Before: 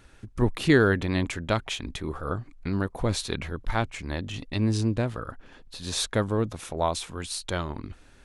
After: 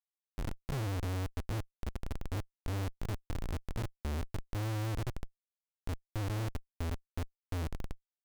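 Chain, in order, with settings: inverse Chebyshev band-stop 590–5000 Hz, stop band 80 dB; notches 60/120/180 Hz; Schmitt trigger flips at -36 dBFS; gain +1.5 dB

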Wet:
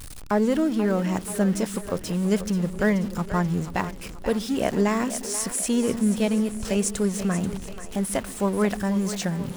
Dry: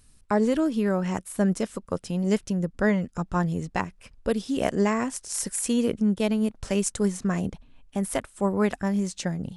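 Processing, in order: zero-crossing step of -33.5 dBFS; split-band echo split 330 Hz, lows 0.135 s, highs 0.484 s, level -11.5 dB

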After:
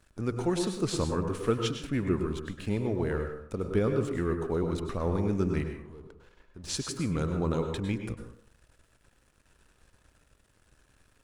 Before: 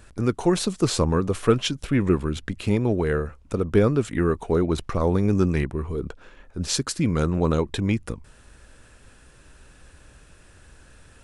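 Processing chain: 5.63–6.64 compressor 6:1, threshold -35 dBFS, peak gain reduction 12.5 dB; crossover distortion -50.5 dBFS; plate-style reverb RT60 0.58 s, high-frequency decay 0.55×, pre-delay 90 ms, DRR 5 dB; gain -8.5 dB

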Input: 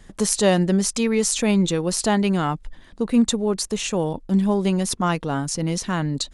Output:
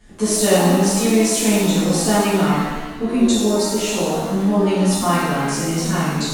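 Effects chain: shimmer reverb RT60 1.3 s, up +7 st, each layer -8 dB, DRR -11 dB; gain -7.5 dB

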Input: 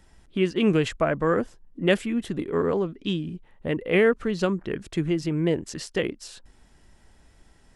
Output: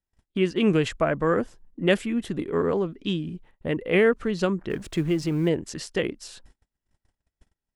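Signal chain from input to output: 4.7–5.49 G.711 law mismatch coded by mu; gate -49 dBFS, range -33 dB

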